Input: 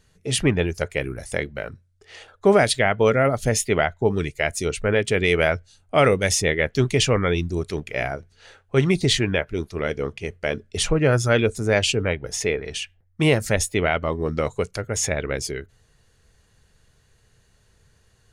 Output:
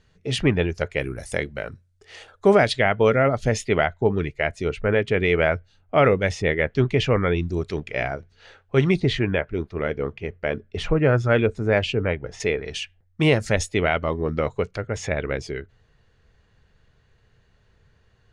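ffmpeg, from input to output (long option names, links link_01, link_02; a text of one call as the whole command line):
ffmpeg -i in.wav -af "asetnsamples=nb_out_samples=441:pad=0,asendcmd='0.99 lowpass f 11000;2.55 lowpass f 4400;4.07 lowpass f 2600;7.42 lowpass f 4700;9 lowpass f 2400;12.4 lowpass f 5800;14.21 lowpass f 3300',lowpass=4500" out.wav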